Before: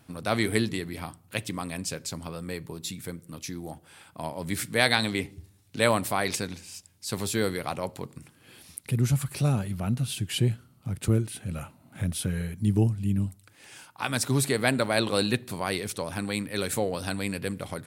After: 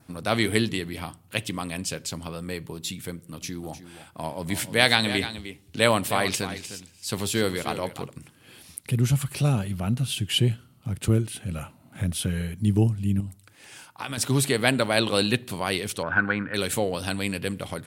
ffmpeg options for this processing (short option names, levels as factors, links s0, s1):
-filter_complex "[0:a]asettb=1/sr,asplit=3[s0][s1][s2];[s0]atrim=end=3.114[s3];[s1]atrim=start=3.11:end=8.1,asetpts=PTS-STARTPTS,afade=t=in:d=0.004:c=qsin,afade=t=out:st=4.986:d=0.004:c=qsin,aecho=1:1:305:0.251,atrim=end_sample=220059[s4];[s2]atrim=start=8.096[s5];[s3][s4]acrossfade=d=0.004:c1=hsin:c2=qsin[s6];[s6][s5]acrossfade=d=0.004:c1=qsin:c2=hsin,asettb=1/sr,asplit=3[s7][s8][s9];[s7]atrim=end=13.204[s10];[s8]atrim=start=13.2:end=14.18,asetpts=PTS-STARTPTS,afade=t=in:d=0.004:c=qsin,afade=t=out:st=0.976:d=0.004:c=qsin,acompressor=threshold=0.0316:ratio=6:attack=3.2:release=140:knee=1:detection=peak[s11];[s9]atrim=start=14.176[s12];[s10][s11]acrossfade=d=0.004:c1=hsin:c2=qsin[s13];[s13][s12]acrossfade=d=0.004:c1=qsin:c2=hsin,asettb=1/sr,asplit=3[s14][s15][s16];[s14]atrim=end=16.034[s17];[s15]atrim=start=16.03:end=16.54,asetpts=PTS-STARTPTS,afade=t=in:d=0.004:c=qsin,afade=t=out:st=0.506:d=0.004:c=qsin,lowpass=f=1500:t=q:w=9.5[s18];[s16]atrim=start=16.536[s19];[s17][s18]acrossfade=d=0.004:c1=hsin:c2=qsin[s20];[s20][s19]acrossfade=d=0.004:c1=qsin:c2=hsin,adynamicequalizer=threshold=0.00282:dfrequency=3000:dqfactor=3.5:tfrequency=3000:tqfactor=3.5:attack=5:release=100:ratio=0.375:range=3.5:mode=boostabove:tftype=bell,volume=1.26"